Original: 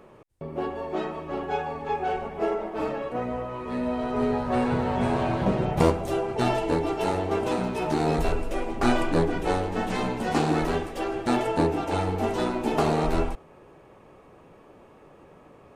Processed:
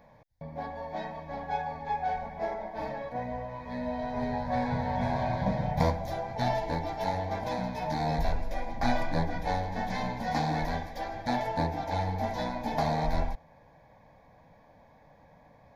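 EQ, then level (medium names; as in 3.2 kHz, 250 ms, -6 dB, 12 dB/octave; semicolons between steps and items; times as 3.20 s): static phaser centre 1.9 kHz, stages 8; -1.5 dB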